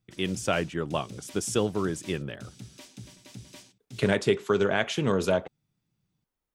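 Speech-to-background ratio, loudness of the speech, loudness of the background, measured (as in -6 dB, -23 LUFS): 19.5 dB, -28.0 LUFS, -47.5 LUFS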